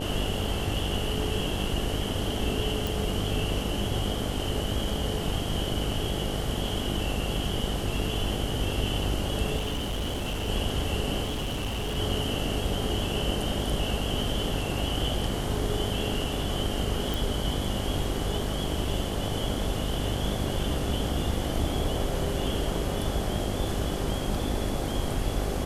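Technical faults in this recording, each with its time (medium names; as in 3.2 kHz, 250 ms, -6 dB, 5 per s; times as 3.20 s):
buzz 50 Hz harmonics 17 -33 dBFS
2.87 s: pop
9.57–10.49 s: clipped -26.5 dBFS
11.23–11.98 s: clipped -27 dBFS
17.14 s: pop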